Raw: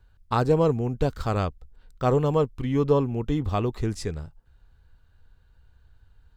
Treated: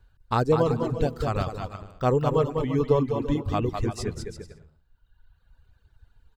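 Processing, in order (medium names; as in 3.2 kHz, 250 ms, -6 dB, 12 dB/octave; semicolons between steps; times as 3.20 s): bouncing-ball echo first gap 200 ms, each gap 0.7×, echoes 5; reverb removal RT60 1.4 s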